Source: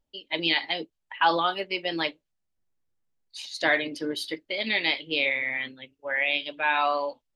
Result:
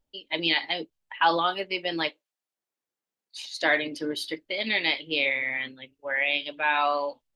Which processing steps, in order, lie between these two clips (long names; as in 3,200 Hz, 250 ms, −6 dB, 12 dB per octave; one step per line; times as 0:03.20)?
0:02.08–0:03.69: high-pass filter 580 Hz → 200 Hz 12 dB per octave